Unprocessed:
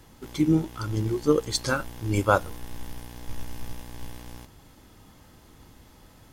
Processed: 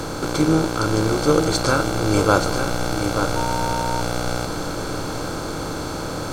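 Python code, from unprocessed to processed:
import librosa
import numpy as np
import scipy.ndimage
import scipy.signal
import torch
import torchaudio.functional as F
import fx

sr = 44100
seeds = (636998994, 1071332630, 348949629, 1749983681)

y = fx.bin_compress(x, sr, power=0.4)
y = y + 10.0 ** (-7.5 / 20.0) * np.pad(y, (int(882 * sr / 1000.0), 0))[:len(y)]
y = fx.dmg_tone(y, sr, hz=920.0, level_db=-25.0, at=(3.35, 4.0), fade=0.02)
y = F.gain(torch.from_numpy(y), 1.0).numpy()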